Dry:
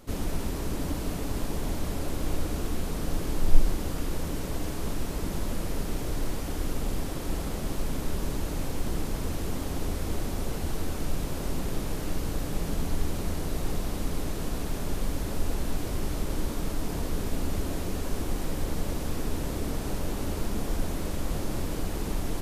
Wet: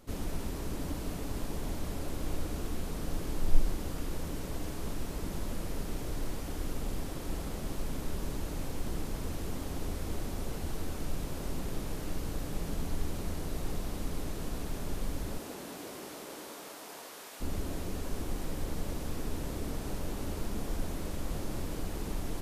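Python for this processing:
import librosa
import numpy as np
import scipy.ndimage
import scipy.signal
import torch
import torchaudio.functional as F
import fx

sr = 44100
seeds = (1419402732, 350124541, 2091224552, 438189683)

y = fx.highpass(x, sr, hz=fx.line((15.37, 210.0), (17.4, 850.0)), slope=12, at=(15.37, 17.4), fade=0.02)
y = F.gain(torch.from_numpy(y), -5.5).numpy()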